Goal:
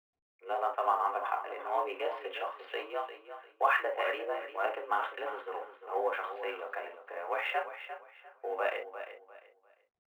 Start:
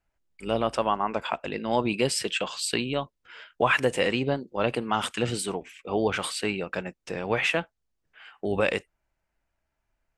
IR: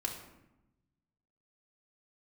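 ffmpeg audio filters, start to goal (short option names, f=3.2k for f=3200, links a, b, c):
-filter_complex "[0:a]adynamicsmooth=sensitivity=5:basefreq=750,acrossover=split=440 2000:gain=0.0891 1 0.178[a][b][c];[a][b][c]amix=inputs=3:normalize=0,aecho=1:1:349|698|1047:0.282|0.0761|0.0205[d];[1:a]atrim=start_sample=2205,atrim=end_sample=3087[e];[d][e]afir=irnorm=-1:irlink=0,highpass=f=260:t=q:w=0.5412,highpass=f=260:t=q:w=1.307,lowpass=f=3.2k:t=q:w=0.5176,lowpass=f=3.2k:t=q:w=0.7071,lowpass=f=3.2k:t=q:w=1.932,afreqshift=69,volume=-3.5dB" -ar 44100 -c:a adpcm_ima_wav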